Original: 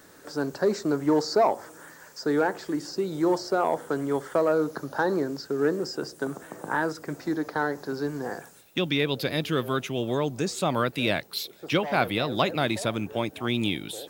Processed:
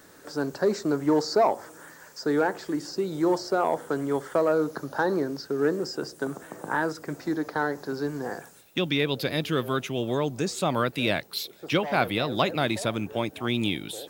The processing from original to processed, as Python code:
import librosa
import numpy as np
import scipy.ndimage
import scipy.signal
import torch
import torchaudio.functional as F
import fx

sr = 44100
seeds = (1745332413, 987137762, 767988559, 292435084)

y = fx.notch(x, sr, hz=7300.0, q=10.0, at=(5.06, 5.63))